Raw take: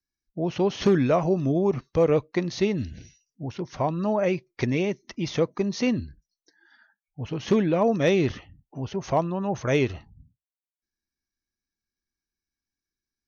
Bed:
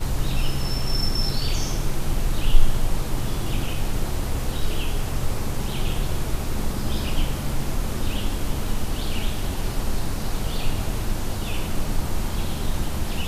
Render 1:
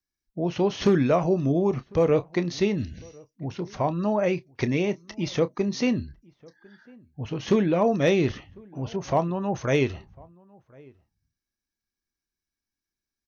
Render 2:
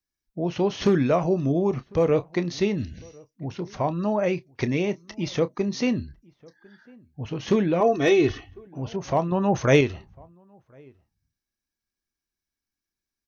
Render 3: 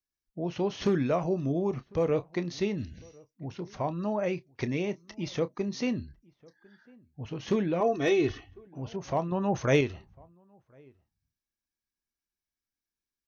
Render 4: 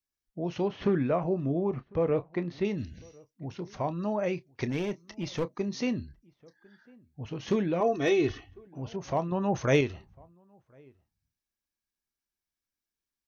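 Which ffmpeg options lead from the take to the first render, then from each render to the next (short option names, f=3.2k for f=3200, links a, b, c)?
-filter_complex "[0:a]asplit=2[a][b];[b]adelay=29,volume=-14dB[c];[a][c]amix=inputs=2:normalize=0,asplit=2[d][e];[e]adelay=1050,volume=-26dB,highshelf=f=4k:g=-23.6[f];[d][f]amix=inputs=2:normalize=0"
-filter_complex "[0:a]asettb=1/sr,asplit=3[a][b][c];[a]atrim=end=7.804[d];[b]atrim=start=7.8:end=8.67,asetpts=PTS-STARTPTS,afade=t=in:d=0.004:c=qsin,afade=t=out:st=0.866:d=0.004:c=qsin,aecho=1:1:2.7:0.8,atrim=end_sample=38367[e];[c]atrim=start=8.666[f];[d][e]acrossfade=d=0.004:c1=hsin:c2=qsin[g];[g][f]acrossfade=d=0.004:c1=qsin:c2=hsin,asplit=3[h][i][j];[h]atrim=end=9.322[k];[i]atrim=start=9.318:end=9.812,asetpts=PTS-STARTPTS,volume=5.5dB[l];[j]atrim=start=9.808[m];[k][l]acrossfade=d=0.004:c1=hsin:c2=hsin[n];[n][m]acrossfade=d=0.004:c1=hsin:c2=hsin"
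-af "volume=-6dB"
-filter_complex "[0:a]asettb=1/sr,asplit=3[a][b][c];[a]atrim=end=0.684[d];[b]atrim=start=0.68:end=2.65,asetpts=PTS-STARTPTS,afade=t=in:d=0.004:c=qsin,afade=t=out:st=1.966:d=0.004:c=qsin,lowpass=2.4k[e];[c]atrim=start=2.646[f];[d][e]acrossfade=d=0.004:c1=hsin:c2=qsin[g];[g][f]acrossfade=d=0.004:c1=qsin:c2=hsin,asplit=3[h][i][j];[h]afade=t=out:st=4.69:d=0.02[k];[i]aeval=exprs='clip(val(0),-1,0.0355)':c=same,afade=t=in:st=4.69:d=0.02,afade=t=out:st=5.45:d=0.02[l];[j]afade=t=in:st=5.45:d=0.02[m];[k][l][m]amix=inputs=3:normalize=0"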